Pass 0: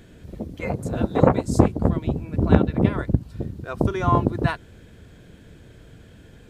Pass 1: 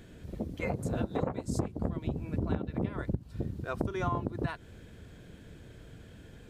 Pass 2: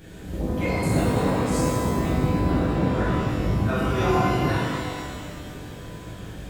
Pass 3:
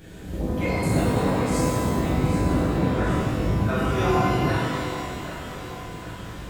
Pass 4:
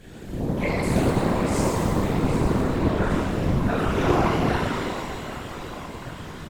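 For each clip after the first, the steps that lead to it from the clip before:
compressor 12:1, threshold -24 dBFS, peak gain reduction 16.5 dB; gain -3.5 dB
high shelf 9200 Hz +5.5 dB; limiter -25 dBFS, peak gain reduction 11 dB; shimmer reverb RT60 1.9 s, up +12 st, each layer -8 dB, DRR -9.5 dB; gain +2.5 dB
thinning echo 0.776 s, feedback 60%, high-pass 420 Hz, level -10.5 dB
whisperiser; doubler 31 ms -13.5 dB; Doppler distortion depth 0.26 ms

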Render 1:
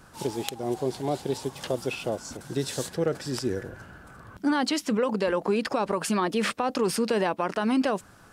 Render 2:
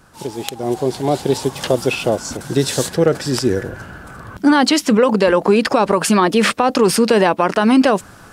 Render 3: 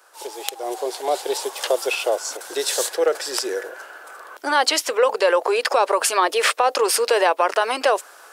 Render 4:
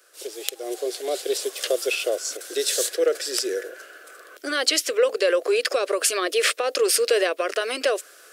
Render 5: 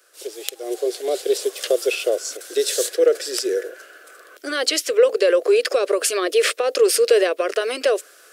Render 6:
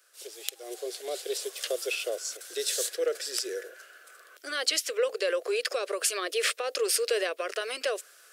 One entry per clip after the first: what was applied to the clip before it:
AGC gain up to 10 dB; gain +2.5 dB
inverse Chebyshev high-pass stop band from 220 Hz, stop band 40 dB; high shelf 9700 Hz +6 dB; gain -2 dB
fixed phaser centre 370 Hz, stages 4
dynamic EQ 430 Hz, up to +6 dB, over -34 dBFS, Q 1.5
HPF 1000 Hz 6 dB/oct; gain -5.5 dB

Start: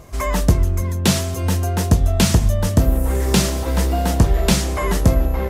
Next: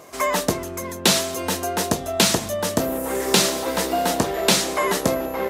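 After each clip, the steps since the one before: HPF 320 Hz 12 dB/oct; dynamic EQ 3900 Hz, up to +4 dB, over -43 dBFS, Q 5; gain +2.5 dB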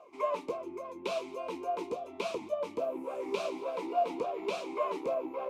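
tube stage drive 15 dB, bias 0.45; vowel sweep a-u 3.5 Hz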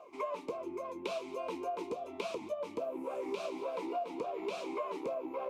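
compressor 5:1, threshold -36 dBFS, peak gain reduction 11 dB; gain +1.5 dB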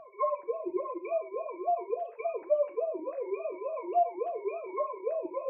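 sine-wave speech; non-linear reverb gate 0.13 s falling, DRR 7.5 dB; gain +5.5 dB

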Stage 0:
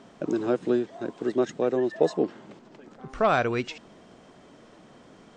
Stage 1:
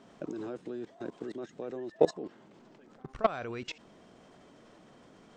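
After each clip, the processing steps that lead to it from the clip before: level quantiser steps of 19 dB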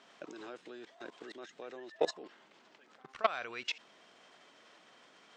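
band-pass 3000 Hz, Q 0.66; gain +5 dB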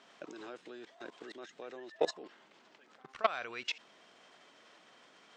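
nothing audible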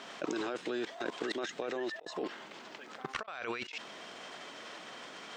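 negative-ratio compressor -48 dBFS, ratio -1; gain +8 dB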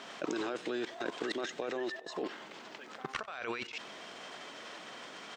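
feedback echo 89 ms, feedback 59%, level -20.5 dB

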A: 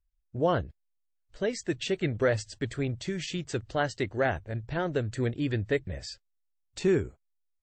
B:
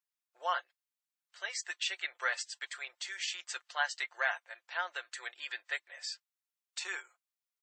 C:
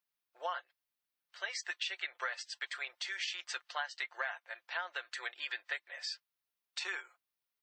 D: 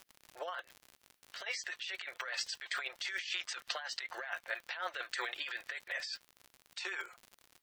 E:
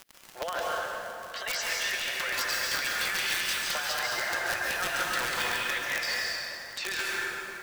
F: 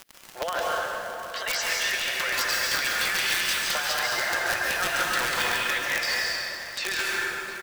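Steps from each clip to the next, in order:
inverse Chebyshev high-pass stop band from 210 Hz, stop band 70 dB; comb 5.7 ms, depth 52%
bell 7400 Hz -11 dB 0.52 oct; compressor 6:1, threshold -38 dBFS, peak gain reduction 12 dB; gain +3.5 dB
rotary speaker horn 6.7 Hz; crackle 74/s -54 dBFS; negative-ratio compressor -48 dBFS, ratio -1; gain +8 dB
in parallel at +3 dB: limiter -32 dBFS, peak gain reduction 11 dB; on the sum: wrapped overs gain 24 dB; plate-style reverb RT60 3.1 s, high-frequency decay 0.55×, pre-delay 0.12 s, DRR -4.5 dB
echo 0.709 s -16 dB; gain +4 dB

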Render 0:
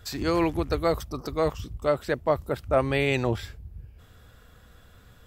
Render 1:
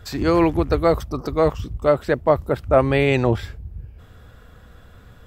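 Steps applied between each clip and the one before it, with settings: high shelf 2700 Hz -8.5 dB; gain +7.5 dB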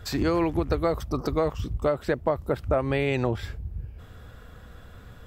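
compressor 6:1, threshold -21 dBFS, peak gain reduction 11 dB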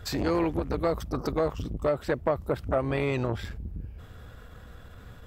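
core saturation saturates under 580 Hz

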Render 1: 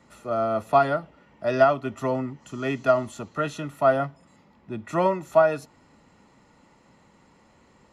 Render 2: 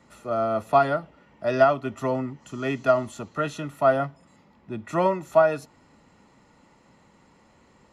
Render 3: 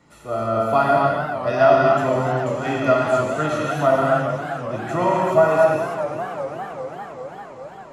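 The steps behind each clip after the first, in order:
nothing audible
non-linear reverb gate 0.33 s flat, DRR -4 dB; warbling echo 0.4 s, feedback 71%, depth 151 cents, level -10.5 dB

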